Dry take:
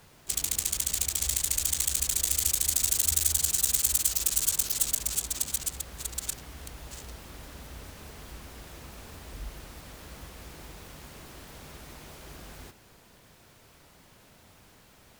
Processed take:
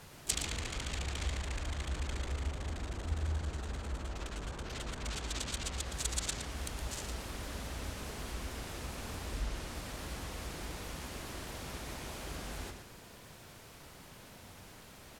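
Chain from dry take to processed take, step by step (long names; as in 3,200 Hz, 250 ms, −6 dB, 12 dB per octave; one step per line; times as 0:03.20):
treble cut that deepens with the level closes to 1,100 Hz, closed at −22.5 dBFS
slap from a distant wall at 20 metres, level −7 dB
level +3 dB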